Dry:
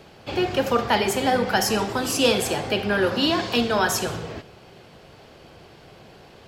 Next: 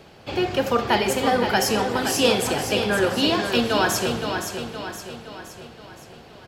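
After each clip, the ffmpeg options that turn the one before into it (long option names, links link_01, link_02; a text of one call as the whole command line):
ffmpeg -i in.wav -af "aecho=1:1:518|1036|1554|2072|2590|3108:0.447|0.223|0.112|0.0558|0.0279|0.014" out.wav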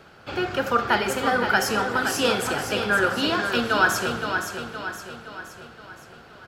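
ffmpeg -i in.wav -af "equalizer=frequency=1400:width_type=o:width=0.49:gain=13,volume=-4dB" out.wav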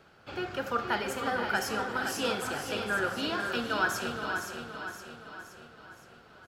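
ffmpeg -i in.wav -af "aecho=1:1:463:0.335,volume=-9dB" out.wav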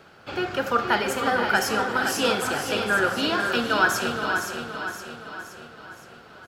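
ffmpeg -i in.wav -af "lowshelf=frequency=76:gain=-7,volume=8dB" out.wav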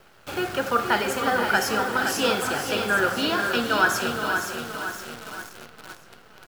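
ffmpeg -i in.wav -af "acrusher=bits=7:dc=4:mix=0:aa=0.000001" out.wav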